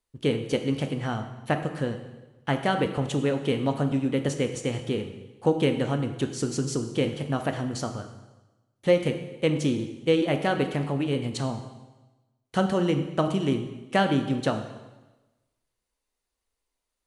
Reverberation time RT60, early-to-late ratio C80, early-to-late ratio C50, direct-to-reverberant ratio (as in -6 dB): 1.1 s, 11.0 dB, 9.0 dB, 6.0 dB